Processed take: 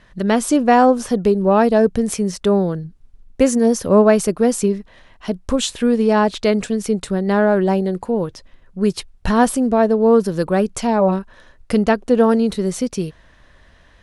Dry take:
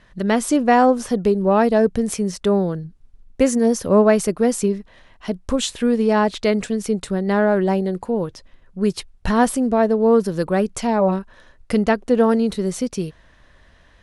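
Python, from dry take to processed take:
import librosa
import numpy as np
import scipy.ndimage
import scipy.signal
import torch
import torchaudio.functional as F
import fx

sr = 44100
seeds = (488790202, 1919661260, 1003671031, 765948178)

y = fx.dynamic_eq(x, sr, hz=2000.0, q=7.0, threshold_db=-45.0, ratio=4.0, max_db=-4)
y = y * 10.0 ** (2.0 / 20.0)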